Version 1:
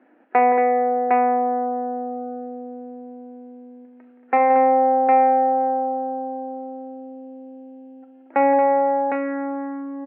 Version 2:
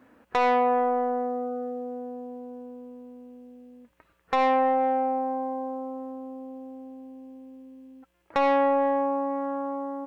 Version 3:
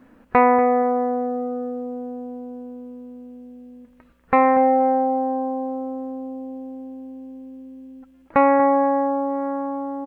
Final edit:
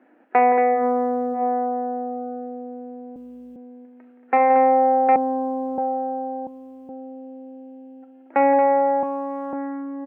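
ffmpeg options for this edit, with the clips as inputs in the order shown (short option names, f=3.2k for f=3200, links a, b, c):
-filter_complex "[2:a]asplit=3[a][b][c];[1:a]asplit=2[d][e];[0:a]asplit=6[f][g][h][i][j][k];[f]atrim=end=0.84[l];[a]atrim=start=0.74:end=1.43[m];[g]atrim=start=1.33:end=3.162[n];[b]atrim=start=3.158:end=3.562[o];[h]atrim=start=3.558:end=5.162[p];[c]atrim=start=5.158:end=5.782[q];[i]atrim=start=5.778:end=6.472[r];[d]atrim=start=6.468:end=6.892[s];[j]atrim=start=6.888:end=9.032[t];[e]atrim=start=9.028:end=9.532[u];[k]atrim=start=9.528[v];[l][m]acrossfade=d=0.1:c1=tri:c2=tri[w];[w][n]acrossfade=d=0.1:c1=tri:c2=tri[x];[x][o]acrossfade=d=0.004:c1=hsin:c2=hsin[y];[y][p]acrossfade=d=0.004:c1=hsin:c2=hsin[z];[z][q]acrossfade=d=0.004:c1=hsin:c2=hsin[aa];[aa][r]acrossfade=d=0.004:c1=hsin:c2=hsin[ab];[ab][s]acrossfade=d=0.004:c1=hsin:c2=hsin[ac];[ac][t]acrossfade=d=0.004:c1=hsin:c2=hsin[ad];[ad][u]acrossfade=d=0.004:c1=hsin:c2=hsin[ae];[ae][v]acrossfade=d=0.004:c1=hsin:c2=hsin"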